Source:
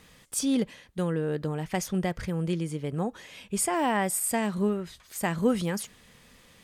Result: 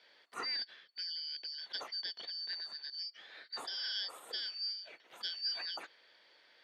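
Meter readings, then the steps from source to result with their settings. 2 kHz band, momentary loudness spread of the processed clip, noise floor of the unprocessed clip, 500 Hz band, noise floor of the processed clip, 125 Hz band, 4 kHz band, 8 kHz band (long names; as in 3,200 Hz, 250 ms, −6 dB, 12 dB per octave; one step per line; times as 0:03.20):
−10.5 dB, 8 LU, −57 dBFS, −27.0 dB, −66 dBFS, below −40 dB, +6.0 dB, −27.0 dB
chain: band-splitting scrambler in four parts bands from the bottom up 4321
high-pass filter 440 Hz 12 dB per octave
high-frequency loss of the air 340 metres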